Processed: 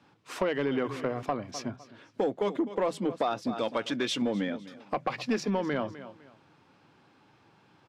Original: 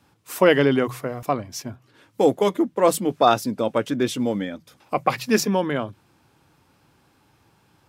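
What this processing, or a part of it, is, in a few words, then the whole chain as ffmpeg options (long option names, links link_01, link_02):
AM radio: -filter_complex "[0:a]asettb=1/sr,asplit=3[link_01][link_02][link_03];[link_01]atrim=end=3.514[link_04];[link_02]atrim=start=3.51:end=4.22,asetpts=PTS-STARTPTS,afade=type=in:duration=0.004:curve=qsin,afade=type=out:start_time=0.706:duration=0.004:curve=qsin,tiltshelf=frequency=1200:gain=-6.5[link_05];[link_03]atrim=start=4.216[link_06];[link_04][link_05]acrossfade=duration=0.004:curve1=hsin:curve2=qsin[link_07];[link_07][link_06]acrossfade=duration=0.004:curve1=qsin:curve2=hsin,highpass=140,lowpass=4300,aecho=1:1:253|506:0.106|0.0297,acompressor=threshold=-23dB:ratio=10,asoftclip=type=tanh:threshold=-18.5dB"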